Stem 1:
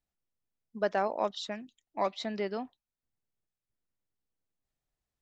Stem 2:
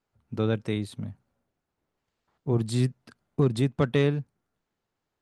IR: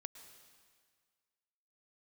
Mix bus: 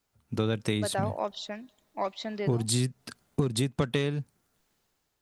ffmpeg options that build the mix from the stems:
-filter_complex "[0:a]acontrast=78,volume=0.422,asplit=2[s0][s1];[s1]volume=0.119[s2];[1:a]highshelf=f=3400:g=12,dynaudnorm=f=100:g=9:m=2,volume=1[s3];[2:a]atrim=start_sample=2205[s4];[s2][s4]afir=irnorm=-1:irlink=0[s5];[s0][s3][s5]amix=inputs=3:normalize=0,acompressor=threshold=0.0708:ratio=10"

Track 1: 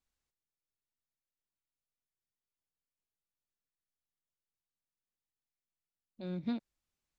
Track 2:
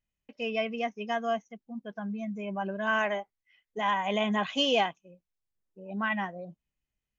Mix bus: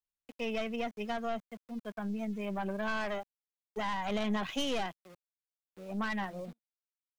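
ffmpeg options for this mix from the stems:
-filter_complex "[0:a]volume=0.178[s0];[1:a]aeval=exprs='(tanh(22.4*val(0)+0.55)-tanh(0.55))/22.4':c=same,aeval=exprs='val(0)*gte(abs(val(0)),0.00211)':c=same,volume=1.19,asplit=2[s1][s2];[s2]apad=whole_len=317009[s3];[s0][s3]sidechaingate=range=0.0224:threshold=0.00708:ratio=16:detection=peak[s4];[s4][s1]amix=inputs=2:normalize=0,acrossover=split=290[s5][s6];[s6]acompressor=threshold=0.02:ratio=2.5[s7];[s5][s7]amix=inputs=2:normalize=0"

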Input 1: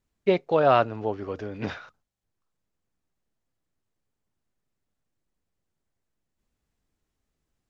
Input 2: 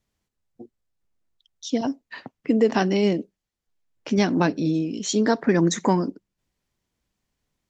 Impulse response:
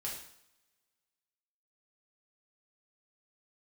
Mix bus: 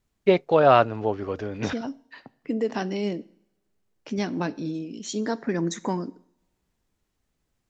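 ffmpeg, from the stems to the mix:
-filter_complex "[0:a]volume=1.41[s0];[1:a]volume=0.398,asplit=3[s1][s2][s3];[s2]volume=0.158[s4];[s3]apad=whole_len=339150[s5];[s0][s5]sidechaincompress=threshold=0.0158:ratio=8:attack=5:release=118[s6];[2:a]atrim=start_sample=2205[s7];[s4][s7]afir=irnorm=-1:irlink=0[s8];[s6][s1][s8]amix=inputs=3:normalize=0"

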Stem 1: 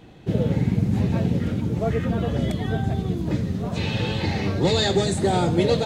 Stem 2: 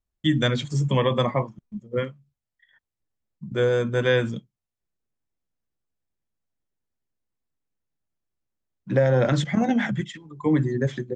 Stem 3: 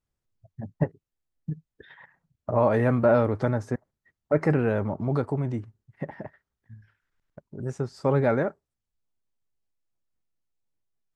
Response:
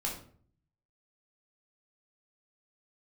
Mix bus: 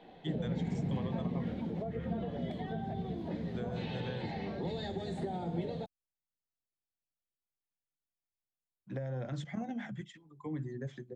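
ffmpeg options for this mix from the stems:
-filter_complex "[0:a]flanger=delay=3.3:depth=4.1:regen=-71:speed=0.61:shape=triangular,volume=1,asplit=2[s0][s1];[s1]volume=0.106[s2];[1:a]volume=0.168[s3];[s0]highpass=250,equalizer=f=310:t=q:w=4:g=-9,equalizer=f=1300:t=q:w=4:g=-9,equalizer=f=2600:t=q:w=4:g=-6,lowpass=f=4100:w=0.5412,lowpass=f=4100:w=1.3066,acompressor=threshold=0.0355:ratio=6,volume=1[s4];[3:a]atrim=start_sample=2205[s5];[s2][s5]afir=irnorm=-1:irlink=0[s6];[s3][s4][s6]amix=inputs=3:normalize=0,equalizer=f=720:t=o:w=0.36:g=5.5,acrossover=split=260[s7][s8];[s8]acompressor=threshold=0.00794:ratio=4[s9];[s7][s9]amix=inputs=2:normalize=0"

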